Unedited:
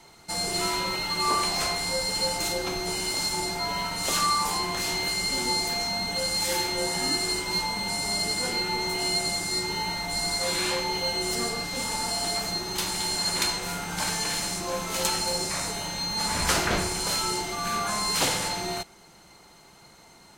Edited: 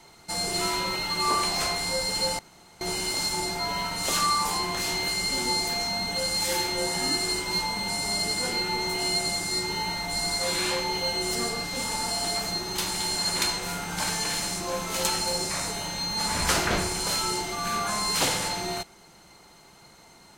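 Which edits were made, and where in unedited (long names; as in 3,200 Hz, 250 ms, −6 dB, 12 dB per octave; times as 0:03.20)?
0:02.39–0:02.81: fill with room tone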